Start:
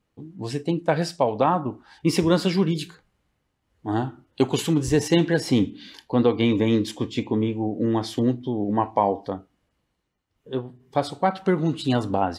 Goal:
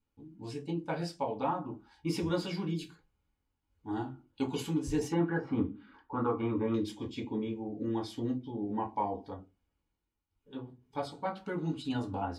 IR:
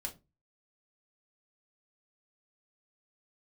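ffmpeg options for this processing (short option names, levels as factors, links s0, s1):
-filter_complex "[0:a]asettb=1/sr,asplit=3[s0][s1][s2];[s0]atrim=end=5.124[s3];[s1]atrim=start=5.12:end=6.74,asetpts=PTS-STARTPTS,afade=t=in:d=0.004:c=qsin,afade=t=out:st=1.616:d=0.004:c=qsin,lowpass=f=1300:t=q:w=5.8[s4];[s2]atrim=start=6.736[s5];[s3][s4]acrossfade=d=0.004:c1=hsin:c2=qsin[s6];[s6][s5]acrossfade=d=0.004:c1=qsin:c2=hsin[s7];[1:a]atrim=start_sample=2205,asetrate=66150,aresample=44100[s8];[s7][s8]afir=irnorm=-1:irlink=0,volume=0.422"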